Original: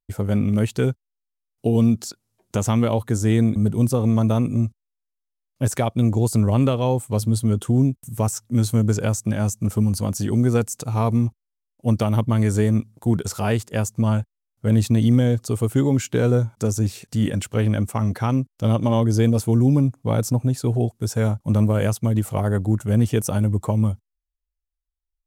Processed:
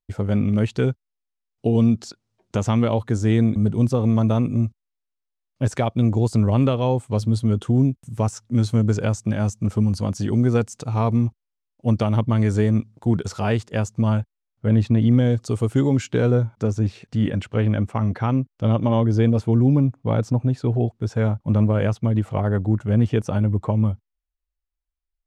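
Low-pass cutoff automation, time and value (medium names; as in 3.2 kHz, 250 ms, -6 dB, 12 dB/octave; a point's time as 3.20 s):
14.08 s 5 kHz
15.01 s 2.4 kHz
15.39 s 6.2 kHz
15.91 s 6.2 kHz
16.53 s 3.2 kHz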